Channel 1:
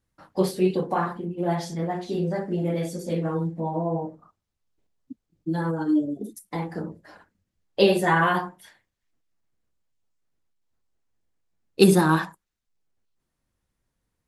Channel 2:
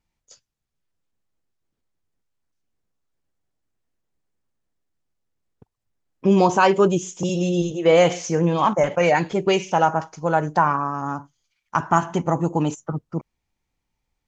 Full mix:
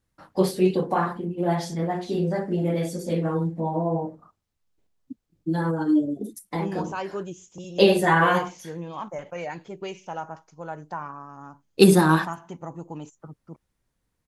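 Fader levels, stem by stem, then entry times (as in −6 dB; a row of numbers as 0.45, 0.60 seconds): +1.5, −15.5 decibels; 0.00, 0.35 seconds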